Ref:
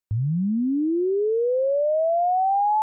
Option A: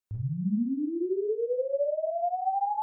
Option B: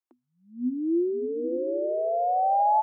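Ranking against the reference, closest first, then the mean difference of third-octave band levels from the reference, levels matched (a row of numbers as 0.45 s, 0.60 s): A, B; 1.5 dB, 4.0 dB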